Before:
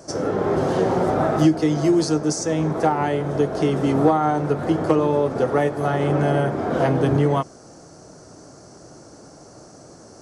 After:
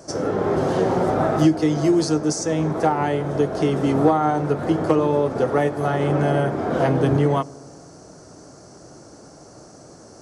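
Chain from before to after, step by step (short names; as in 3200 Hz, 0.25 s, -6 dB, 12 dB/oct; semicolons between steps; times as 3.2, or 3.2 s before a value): dark delay 68 ms, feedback 79%, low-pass 710 Hz, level -23 dB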